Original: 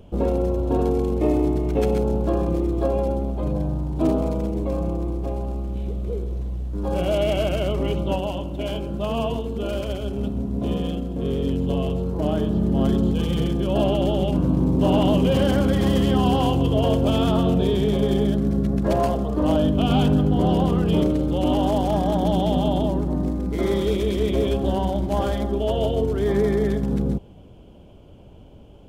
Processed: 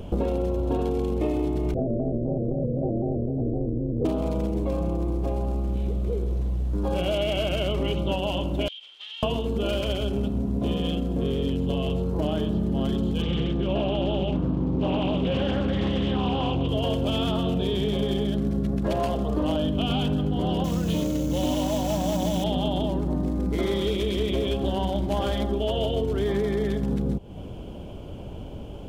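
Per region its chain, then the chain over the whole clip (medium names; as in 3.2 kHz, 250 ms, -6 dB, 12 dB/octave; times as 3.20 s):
1.74–4.05 s: ring modulator 190 Hz + steep low-pass 660 Hz 72 dB/octave + vibrato with a chosen wave square 3.9 Hz, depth 100 cents
8.68–9.23 s: comb filter that takes the minimum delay 2.2 ms + ladder band-pass 3.4 kHz, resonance 80% + compression 10:1, threshold -45 dBFS
13.22–16.69 s: Bessel low-pass 3.3 kHz + loudspeaker Doppler distortion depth 0.24 ms
20.64–22.44 s: sample-rate reducer 6.7 kHz, jitter 20% + comb of notches 400 Hz
whole clip: dynamic bell 3.1 kHz, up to +7 dB, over -47 dBFS, Q 1.5; compression, threshold -32 dBFS; trim +9 dB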